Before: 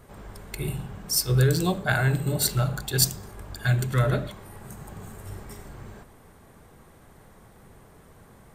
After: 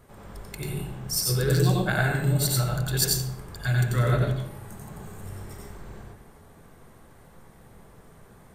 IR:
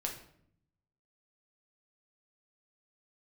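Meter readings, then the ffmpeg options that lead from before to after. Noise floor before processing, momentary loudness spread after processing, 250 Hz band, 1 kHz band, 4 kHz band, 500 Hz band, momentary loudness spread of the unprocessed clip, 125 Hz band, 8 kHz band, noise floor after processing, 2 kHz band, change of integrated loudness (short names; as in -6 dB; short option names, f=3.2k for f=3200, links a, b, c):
-53 dBFS, 19 LU, +0.5 dB, 0.0 dB, -0.5 dB, 0.0 dB, 21 LU, +0.5 dB, -0.5 dB, -52 dBFS, -0.5 dB, -0.5 dB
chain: -filter_complex "[0:a]asplit=2[a][b];[1:a]atrim=start_sample=2205,adelay=90[c];[b][c]afir=irnorm=-1:irlink=0,volume=-0.5dB[d];[a][d]amix=inputs=2:normalize=0,volume=-3.5dB"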